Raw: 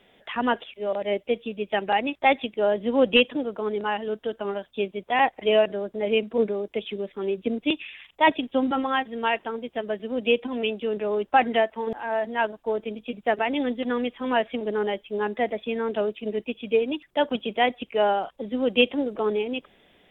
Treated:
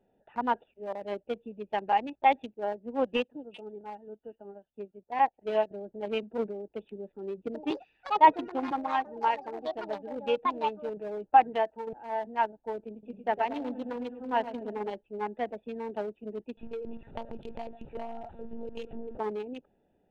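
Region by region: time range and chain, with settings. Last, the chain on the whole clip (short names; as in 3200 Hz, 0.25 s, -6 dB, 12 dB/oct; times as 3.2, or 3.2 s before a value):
2.53–5.71 bands offset in time lows, highs 0.38 s, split 3000 Hz + upward expander, over -39 dBFS
7.43–11.95 comb 6.4 ms, depth 37% + echoes that change speed 92 ms, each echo +5 st, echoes 3, each echo -6 dB + air absorption 130 m
12.92–14.91 de-hum 272.8 Hz, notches 32 + feedback echo 0.108 s, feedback 48%, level -8 dB
16.57–19.18 zero-crossing step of -31.5 dBFS + monotone LPC vocoder at 8 kHz 230 Hz + compressor 4:1, threshold -24 dBFS
whole clip: Wiener smoothing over 41 samples; bell 890 Hz +11.5 dB 0.5 oct; gain -8.5 dB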